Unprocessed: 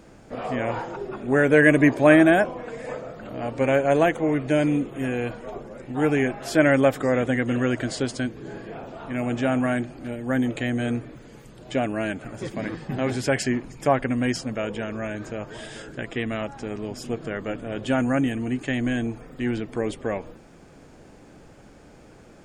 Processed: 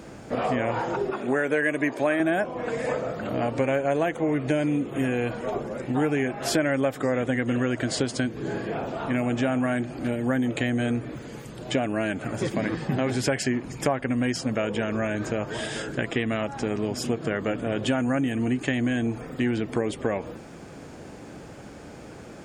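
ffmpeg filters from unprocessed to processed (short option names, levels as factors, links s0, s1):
-filter_complex "[0:a]asettb=1/sr,asplit=3[s0][s1][s2];[s0]atrim=end=1.104[s3];[s1]atrim=start=1.1:end=2.2,asetpts=PTS-STARTPTS,afade=t=in:d=0.004:c=qsin,afade=t=out:st=1.096:d=0.004:c=qsin,highpass=f=410:p=1[s4];[s2]atrim=start=2.196[s5];[s3][s4]acrossfade=d=0.004:c1=hsin:c2=qsin[s6];[s6][s5]acrossfade=d=0.004:c1=qsin:c2=hsin,highpass=60,acompressor=threshold=0.0355:ratio=5,volume=2.24"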